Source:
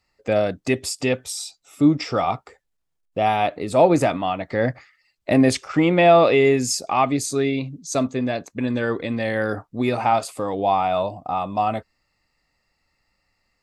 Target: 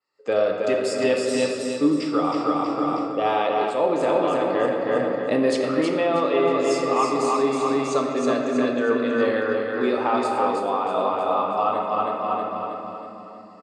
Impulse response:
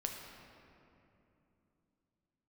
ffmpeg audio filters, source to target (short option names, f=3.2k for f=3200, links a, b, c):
-filter_complex "[0:a]highpass=300,equalizer=f=450:t=q:w=4:g=6,equalizer=f=700:t=q:w=4:g=-6,equalizer=f=1.2k:t=q:w=4:g=6,equalizer=f=2.2k:t=q:w=4:g=-7,equalizer=f=6.1k:t=q:w=4:g=-5,lowpass=f=8.8k:w=0.5412,lowpass=f=8.8k:w=1.3066,aecho=1:1:319|638|957|1276|1595|1914:0.631|0.278|0.122|0.0537|0.0236|0.0104[a];[1:a]atrim=start_sample=2205[b];[a][b]afir=irnorm=-1:irlink=0,dynaudnorm=f=110:g=3:m=16.5dB,adynamicequalizer=threshold=0.0251:dfrequency=4800:dqfactor=0.7:tfrequency=4800:tqfactor=0.7:attack=5:release=100:ratio=0.375:range=2:mode=cutabove:tftype=highshelf,volume=-8.5dB"